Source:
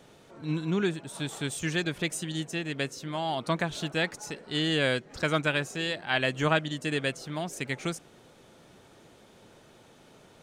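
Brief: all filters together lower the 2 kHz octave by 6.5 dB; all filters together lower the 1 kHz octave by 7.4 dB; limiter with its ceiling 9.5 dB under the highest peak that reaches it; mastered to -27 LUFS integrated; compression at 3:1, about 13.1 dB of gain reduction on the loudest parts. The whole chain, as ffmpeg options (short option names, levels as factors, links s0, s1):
-af "equalizer=f=1000:t=o:g=-9,equalizer=f=2000:t=o:g=-5.5,acompressor=threshold=0.00794:ratio=3,volume=10.6,alimiter=limit=0.168:level=0:latency=1"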